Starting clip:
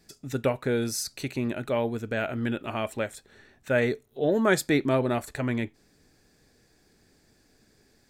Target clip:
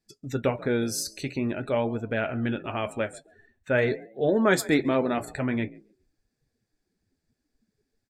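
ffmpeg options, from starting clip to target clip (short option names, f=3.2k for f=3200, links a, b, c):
-filter_complex "[0:a]asplit=4[a][b][c][d];[b]adelay=137,afreqshift=46,volume=-20dB[e];[c]adelay=274,afreqshift=92,volume=-29.6dB[f];[d]adelay=411,afreqshift=138,volume=-39.3dB[g];[a][e][f][g]amix=inputs=4:normalize=0,flanger=delay=8.4:depth=4.8:regen=-62:speed=0.47:shape=triangular,afftdn=nr=20:nf=-52,volume=5dB"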